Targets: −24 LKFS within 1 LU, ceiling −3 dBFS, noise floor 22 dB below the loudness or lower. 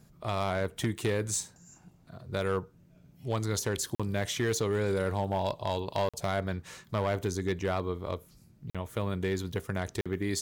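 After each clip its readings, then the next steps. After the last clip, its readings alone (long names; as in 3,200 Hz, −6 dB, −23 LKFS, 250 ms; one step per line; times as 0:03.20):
share of clipped samples 0.9%; peaks flattened at −22.5 dBFS; number of dropouts 4; longest dropout 46 ms; integrated loudness −32.5 LKFS; sample peak −22.5 dBFS; target loudness −24.0 LKFS
→ clipped peaks rebuilt −22.5 dBFS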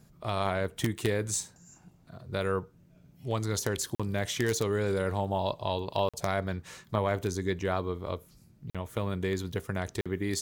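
share of clipped samples 0.0%; number of dropouts 4; longest dropout 46 ms
→ repair the gap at 0:03.95/0:06.09/0:08.70/0:10.01, 46 ms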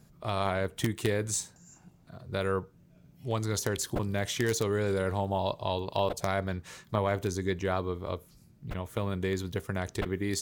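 number of dropouts 0; integrated loudness −32.0 LKFS; sample peak −13.5 dBFS; target loudness −24.0 LKFS
→ level +8 dB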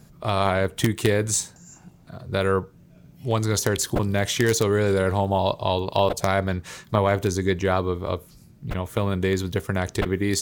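integrated loudness −24.0 LKFS; sample peak −5.5 dBFS; background noise floor −51 dBFS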